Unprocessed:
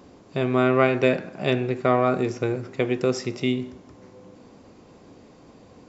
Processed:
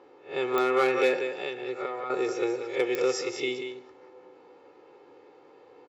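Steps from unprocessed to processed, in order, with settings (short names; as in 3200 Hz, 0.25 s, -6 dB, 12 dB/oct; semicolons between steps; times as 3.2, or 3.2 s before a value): spectral swells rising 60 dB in 0.34 s; 1.27–2.1 compressor 12:1, threshold -25 dBFS, peak gain reduction 11.5 dB; comb 2.3 ms, depth 82%; echo 0.185 s -8.5 dB; overloaded stage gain 10 dB; low-pass opened by the level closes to 2300 Hz, open at -18.5 dBFS; HPF 380 Hz 12 dB/oct; pops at 0.58/2.95, -9 dBFS; gain -4.5 dB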